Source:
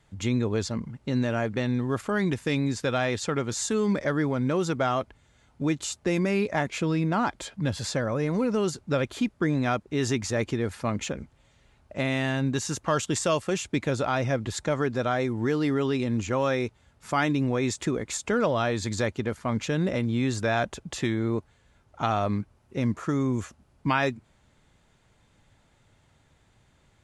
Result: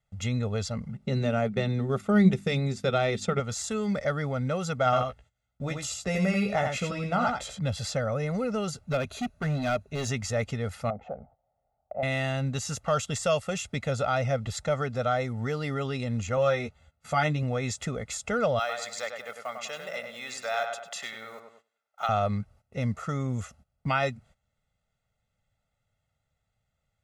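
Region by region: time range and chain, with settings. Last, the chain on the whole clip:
0.88–3.40 s: hum notches 50/100/150/200/250/300/350 Hz + transient shaper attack 0 dB, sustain -6 dB + small resonant body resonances 200/380/2300/3600 Hz, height 15 dB, ringing for 90 ms
4.84–7.59 s: gate -54 dBFS, range -7 dB + doubling 16 ms -7 dB + delay 85 ms -5 dB
8.85–10.09 s: rippled EQ curve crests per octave 1.5, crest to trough 8 dB + hard clipper -21 dBFS
10.90–12.03 s: resonant low-pass 740 Hz, resonance Q 6.4 + compression 1.5:1, threshold -37 dBFS + bass shelf 190 Hz -8 dB
16.36–17.43 s: treble shelf 10 kHz -7 dB + band-stop 5.3 kHz, Q 15 + doubling 13 ms -4.5 dB
18.59–22.09 s: block-companded coder 7-bit + high-pass 790 Hz + filtered feedback delay 99 ms, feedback 42%, low-pass 2.8 kHz, level -5 dB
whole clip: gate -52 dBFS, range -16 dB; de-esser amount 55%; comb 1.5 ms, depth 88%; trim -4 dB

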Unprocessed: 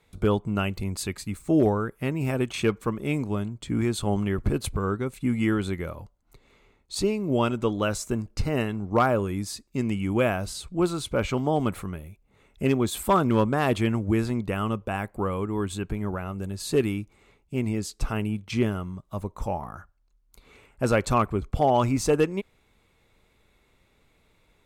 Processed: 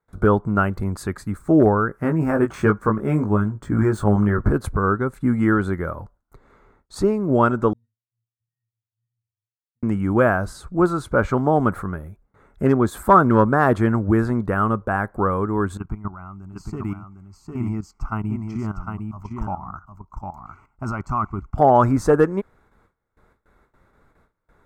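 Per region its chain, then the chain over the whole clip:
1.88–4.51 s: median filter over 3 samples + peaking EQ 3.8 kHz -5.5 dB 0.47 oct + doubling 19 ms -4.5 dB
7.73–9.83 s: Chebyshev band-stop 160–1700 Hz, order 5 + inverted gate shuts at -34 dBFS, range -27 dB + pitch-class resonator A#, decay 0.55 s
15.77–21.58 s: level held to a coarse grid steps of 14 dB + static phaser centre 2.5 kHz, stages 8 + delay 754 ms -5 dB
whole clip: gate with hold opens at -53 dBFS; resonant high shelf 2 kHz -10 dB, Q 3; trim +5.5 dB

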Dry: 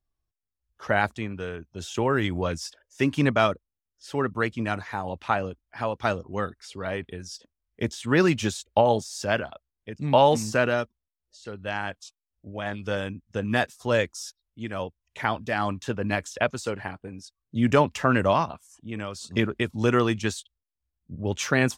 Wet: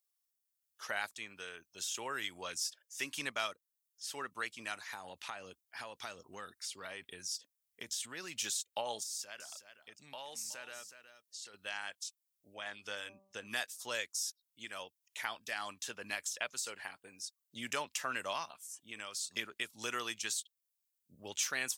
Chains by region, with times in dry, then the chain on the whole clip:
4.89–8.44 s: bass shelf 380 Hz +6.5 dB + compression 5:1, threshold -26 dBFS
9.03–11.54 s: compression 2:1, threshold -45 dBFS + delay 370 ms -12 dB
12.54–13.47 s: treble shelf 5.4 kHz -7.5 dB + de-hum 194.3 Hz, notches 6
whole clip: differentiator; compression 1.5:1, threshold -52 dBFS; trim +7.5 dB

